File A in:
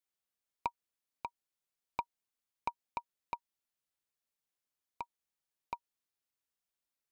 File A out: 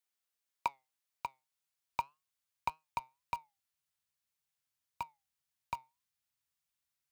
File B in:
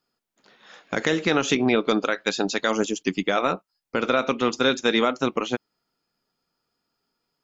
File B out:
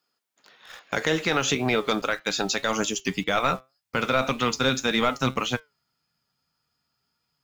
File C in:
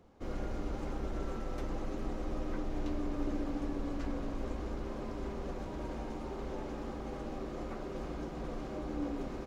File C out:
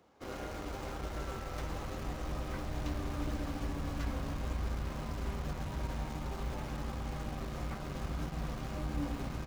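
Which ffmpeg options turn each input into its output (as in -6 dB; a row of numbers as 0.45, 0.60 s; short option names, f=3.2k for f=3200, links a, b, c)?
-filter_complex "[0:a]flanger=delay=6.3:depth=1.4:regen=82:speed=1.8:shape=sinusoidal,highpass=77,lowshelf=f=490:g=-9.5,acrossover=split=860[a][b];[b]alimiter=limit=-23dB:level=0:latency=1:release=111[c];[a][c]amix=inputs=2:normalize=0,asoftclip=type=tanh:threshold=-18dB,asplit=2[d][e];[e]acrusher=bits=7:mix=0:aa=0.000001,volume=-10dB[f];[d][f]amix=inputs=2:normalize=0,asubboost=boost=11.5:cutoff=110,volume=7dB"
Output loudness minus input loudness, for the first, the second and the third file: +2.5, -1.5, +0.5 LU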